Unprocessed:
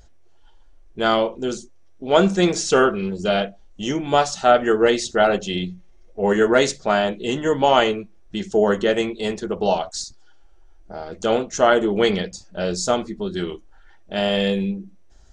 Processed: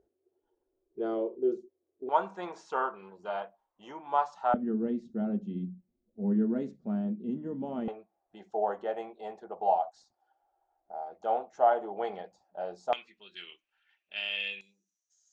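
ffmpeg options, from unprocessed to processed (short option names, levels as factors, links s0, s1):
-af "asetnsamples=n=441:p=0,asendcmd='2.09 bandpass f 950;4.54 bandpass f 220;7.88 bandpass f 770;12.93 bandpass f 2600;14.61 bandpass f 6500',bandpass=f=390:t=q:w=6.2:csg=0"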